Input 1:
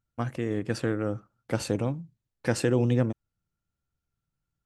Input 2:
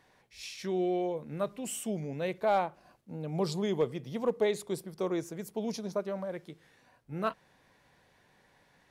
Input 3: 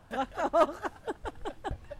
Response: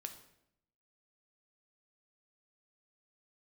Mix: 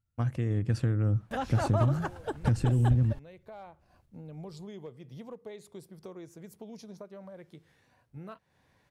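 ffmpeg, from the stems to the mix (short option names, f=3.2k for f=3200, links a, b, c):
-filter_complex "[0:a]asubboost=boost=8:cutoff=240,acompressor=threshold=-23dB:ratio=6,volume=-5dB,asplit=2[a][b];[1:a]acompressor=threshold=-41dB:ratio=3,adelay=1050,volume=-4.5dB[c];[2:a]agate=range=-13dB:threshold=-51dB:ratio=16:detection=peak,alimiter=limit=-24dB:level=0:latency=1:release=56,adelay=1200,volume=1dB[d];[b]apad=whole_len=439130[e];[c][e]sidechaincompress=threshold=-34dB:ratio=8:attack=16:release=1350[f];[a][f][d]amix=inputs=3:normalize=0,equalizer=f=88:w=0.97:g=9.5"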